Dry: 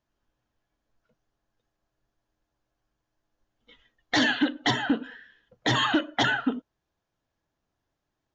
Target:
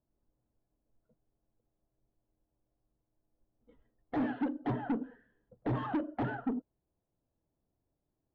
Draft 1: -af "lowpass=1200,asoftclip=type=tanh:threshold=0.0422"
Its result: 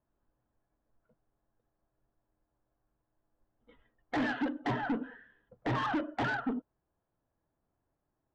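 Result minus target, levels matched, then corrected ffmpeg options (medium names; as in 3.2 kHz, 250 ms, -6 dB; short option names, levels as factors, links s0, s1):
1 kHz band +3.0 dB
-af "lowpass=570,asoftclip=type=tanh:threshold=0.0422"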